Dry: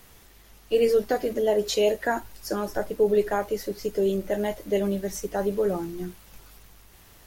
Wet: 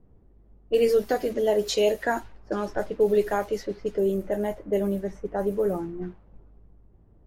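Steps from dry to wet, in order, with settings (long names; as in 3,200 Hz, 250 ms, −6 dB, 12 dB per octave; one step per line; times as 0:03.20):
low-pass that shuts in the quiet parts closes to 330 Hz, open at −21.5 dBFS
0:03.98–0:06.02: parametric band 4,100 Hz −11 dB 1.8 octaves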